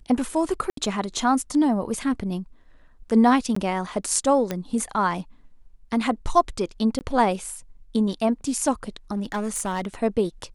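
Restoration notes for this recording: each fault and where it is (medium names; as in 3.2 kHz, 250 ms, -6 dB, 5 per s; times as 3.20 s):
0.70–0.77 s: dropout 73 ms
3.55–3.56 s: dropout 14 ms
4.51 s: pop -12 dBFS
6.99–7.01 s: dropout 19 ms
9.14–10.03 s: clipped -22 dBFS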